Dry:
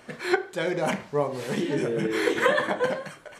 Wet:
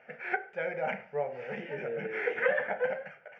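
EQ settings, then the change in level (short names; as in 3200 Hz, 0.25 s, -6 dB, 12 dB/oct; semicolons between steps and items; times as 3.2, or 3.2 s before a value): air absorption 89 m; speaker cabinet 280–3600 Hz, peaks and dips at 370 Hz -9 dB, 610 Hz -6 dB, 970 Hz -5 dB, 1800 Hz -5 dB, 3300 Hz -10 dB; fixed phaser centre 1100 Hz, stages 6; +1.0 dB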